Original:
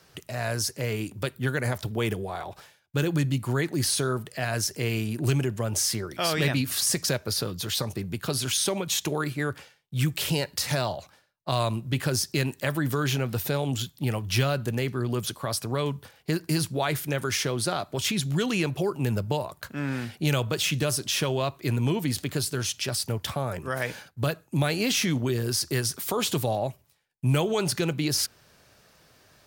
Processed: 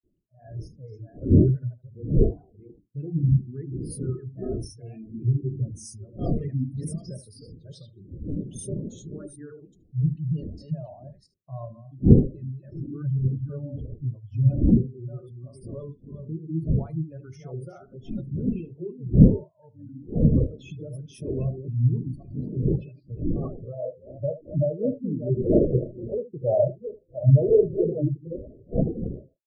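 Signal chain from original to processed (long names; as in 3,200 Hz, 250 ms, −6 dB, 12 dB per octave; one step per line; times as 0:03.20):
delay that plays each chunk backwards 390 ms, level −3 dB
wind on the microphone 370 Hz −26 dBFS
ambience of single reflections 31 ms −11 dB, 76 ms −6.5 dB
noise gate with hold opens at −26 dBFS
gate on every frequency bin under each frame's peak −15 dB strong
low-pass filter sweep 9,800 Hz → 600 Hz, 0:22.24–0:23.86
automatic gain control gain up to 4 dB
every bin expanded away from the loudest bin 2.5 to 1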